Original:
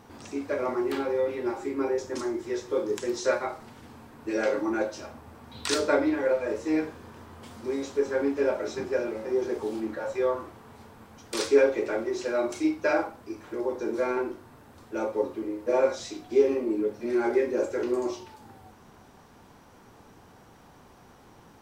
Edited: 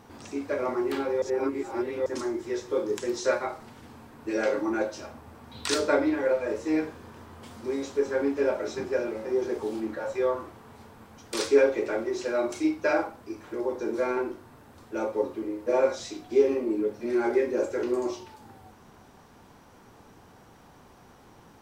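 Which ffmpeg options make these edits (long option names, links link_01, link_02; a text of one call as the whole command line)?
ffmpeg -i in.wav -filter_complex "[0:a]asplit=3[link_01][link_02][link_03];[link_01]atrim=end=1.222[link_04];[link_02]atrim=start=1.218:end=2.062,asetpts=PTS-STARTPTS,areverse[link_05];[link_03]atrim=start=2.058[link_06];[link_04][link_05]acrossfade=duration=0.004:curve1=hsin:curve2=hsin[link_07];[link_07][link_06]acrossfade=duration=0.004:curve1=hsin:curve2=hsin" out.wav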